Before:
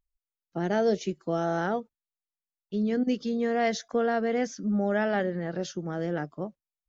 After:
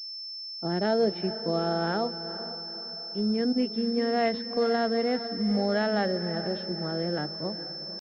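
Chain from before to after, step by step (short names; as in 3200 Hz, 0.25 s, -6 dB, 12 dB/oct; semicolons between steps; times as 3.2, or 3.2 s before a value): tempo 0.86×; diffused feedback echo 0.461 s, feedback 48%, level -12 dB; pulse-width modulation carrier 5300 Hz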